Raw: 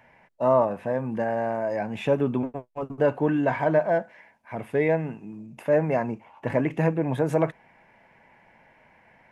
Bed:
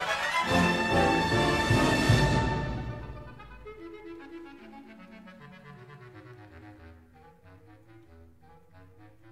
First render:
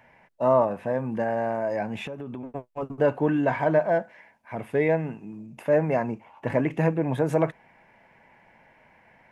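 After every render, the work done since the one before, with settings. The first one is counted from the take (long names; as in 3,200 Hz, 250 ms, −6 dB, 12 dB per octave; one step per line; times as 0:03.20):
0:02.03–0:02.54: downward compressor 8 to 1, threshold −32 dBFS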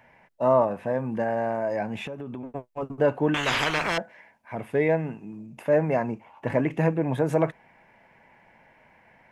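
0:03.34–0:03.98: every bin compressed towards the loudest bin 10 to 1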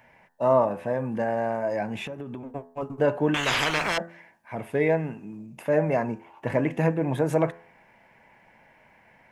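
high-shelf EQ 5,100 Hz +4.5 dB
hum removal 84.46 Hz, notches 23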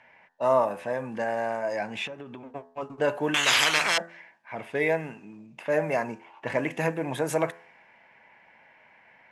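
low-pass that shuts in the quiet parts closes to 3,000 Hz, open at −19 dBFS
spectral tilt +3 dB per octave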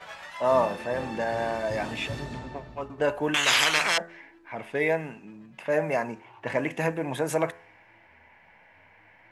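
mix in bed −13 dB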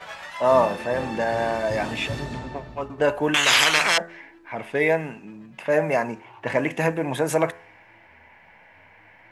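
level +4.5 dB
brickwall limiter −3 dBFS, peak gain reduction 1.5 dB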